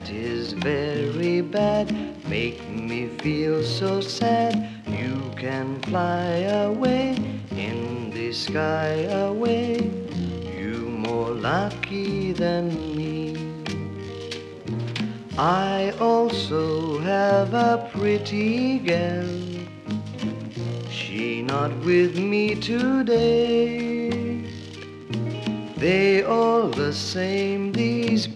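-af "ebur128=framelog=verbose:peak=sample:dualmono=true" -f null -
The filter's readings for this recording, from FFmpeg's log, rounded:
Integrated loudness:
  I:         -21.1 LUFS
  Threshold: -31.2 LUFS
Loudness range:
  LRA:         4.4 LU
  Threshold: -41.2 LUFS
  LRA low:   -23.4 LUFS
  LRA high:  -19.0 LUFS
Sample peak:
  Peak:       -7.4 dBFS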